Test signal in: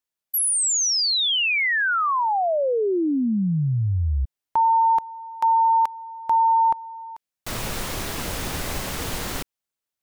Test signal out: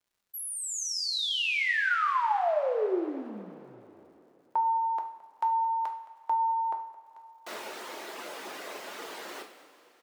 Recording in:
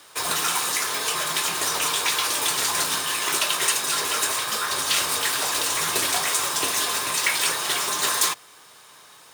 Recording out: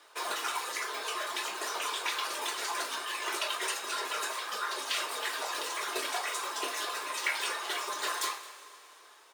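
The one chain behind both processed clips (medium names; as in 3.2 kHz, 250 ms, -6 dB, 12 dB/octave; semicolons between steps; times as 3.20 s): reverb removal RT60 1.1 s; high-pass 330 Hz 24 dB/octave; treble shelf 4.7 kHz -12 dB; crackle 170 per s -58 dBFS; on a send: delay 218 ms -19.5 dB; on the sum: two-slope reverb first 0.47 s, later 3.4 s, from -15 dB, DRR 3 dB; trim -6 dB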